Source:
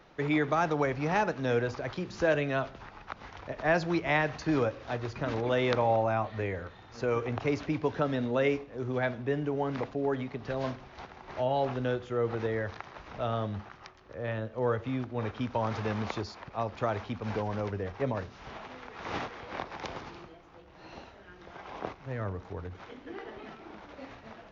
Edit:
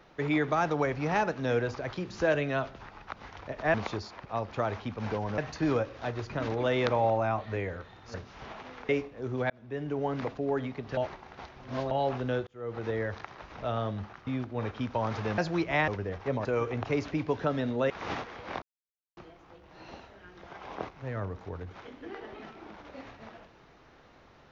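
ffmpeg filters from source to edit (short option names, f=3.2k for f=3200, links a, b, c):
-filter_complex "[0:a]asplit=16[a][b][c][d][e][f][g][h][i][j][k][l][m][n][o][p];[a]atrim=end=3.742[q];[b]atrim=start=15.978:end=17.622[r];[c]atrim=start=4.238:end=7.002[s];[d]atrim=start=18.188:end=18.942[t];[e]atrim=start=8.448:end=9.06,asetpts=PTS-STARTPTS,afade=t=out:st=0.608:d=0.004:c=hsin[u];[f]atrim=start=9.06:end=10.532,asetpts=PTS-STARTPTS,afade=t=in:d=0.49[v];[g]atrim=start=10.528:end=11.472,asetpts=PTS-STARTPTS,areverse[w];[h]atrim=start=11.468:end=12.03,asetpts=PTS-STARTPTS,afade=t=out:st=0.558:d=0.004:c=hsin[x];[i]atrim=start=12.03:end=13.832,asetpts=PTS-STARTPTS,afade=t=in:d=0.47[y];[j]atrim=start=14.868:end=15.982[z];[k]atrim=start=3.738:end=4.242[aa];[l]atrim=start=17.618:end=18.192[ab];[m]atrim=start=6.998:end=8.452[ac];[n]atrim=start=18.938:end=19.66,asetpts=PTS-STARTPTS,afade=t=out:st=0.718:d=0.004:c=hsin[ad];[o]atrim=start=19.66:end=20.21,asetpts=PTS-STARTPTS,volume=0[ae];[p]atrim=start=20.21,asetpts=PTS-STARTPTS,afade=t=in:d=0.004:c=hsin[af];[q][r]acrossfade=d=0.004:c1=hsin:c2=hsin[ag];[ag][s]acrossfade=d=0.004:c1=hsin:c2=hsin[ah];[ah][t]acrossfade=d=0.004:c1=hsin:c2=hsin[ai];[u][v]concat=n=2:v=0:a=1[aj];[ai][aj]acrossfade=d=0.004:c1=hsin:c2=hsin[ak];[ak][w]acrossfade=d=0.004:c1=hsin:c2=hsin[al];[x][y]concat=n=2:v=0:a=1[am];[al][am]acrossfade=d=0.004:c1=hsin:c2=hsin[an];[an][z]acrossfade=d=0.004:c1=hsin:c2=hsin[ao];[ao][aa]acrossfade=d=0.004:c1=hsin:c2=hsin[ap];[ap][ab]acrossfade=d=0.004:c1=hsin:c2=hsin[aq];[aq][ac]acrossfade=d=0.004:c1=hsin:c2=hsin[ar];[ad][ae][af]concat=n=3:v=0:a=1[as];[ar][as]acrossfade=d=0.004:c1=hsin:c2=hsin"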